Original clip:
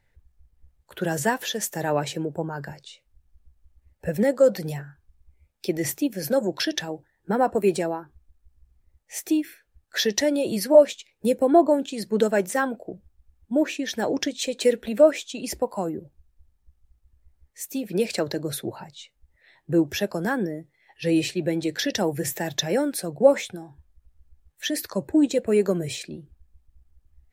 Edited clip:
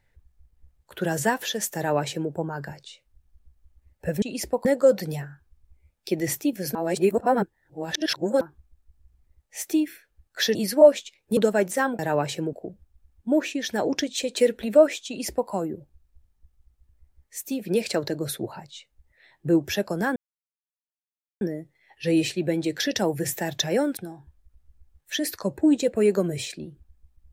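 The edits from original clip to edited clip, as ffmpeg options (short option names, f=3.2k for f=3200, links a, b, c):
-filter_complex "[0:a]asplit=11[a][b][c][d][e][f][g][h][i][j][k];[a]atrim=end=4.222[l];[b]atrim=start=15.308:end=15.742[m];[c]atrim=start=4.218:end=6.322[n];[d]atrim=start=6.318:end=7.982,asetpts=PTS-STARTPTS,areverse[o];[e]atrim=start=7.978:end=10.122[p];[f]atrim=start=10.478:end=11.302[q];[g]atrim=start=12.148:end=12.772[r];[h]atrim=start=1.768:end=2.312[s];[i]atrim=start=12.768:end=20.4,asetpts=PTS-STARTPTS,afade=t=out:st=7.628:d=0.004:c=hsin,apad=pad_dur=1.25[t];[j]atrim=start=20.4:end=22.962,asetpts=PTS-STARTPTS,afade=t=in:d=0.004:c=hsin[u];[k]atrim=start=23.478[v];[l][m]acrossfade=d=0.004:c1=hsin:c2=hsin[w];[w][n]acrossfade=d=0.004:c1=hsin:c2=hsin[x];[x][o]acrossfade=d=0.004:c1=hsin:c2=hsin[y];[y][p]acrossfade=d=0.004:c1=hsin:c2=hsin[z];[z][q]acrossfade=d=0.004:c1=hsin:c2=hsin[aa];[aa][r]acrossfade=d=0.004:c1=hsin:c2=hsin[ab];[ab][s]acrossfade=d=0.004:c1=hsin:c2=hsin[ac];[t][u]concat=n=2:v=0:a=1[ad];[ac][ad]acrossfade=d=0.004:c1=hsin:c2=hsin[ae];[ae][v]acrossfade=d=0.004:c1=hsin:c2=hsin"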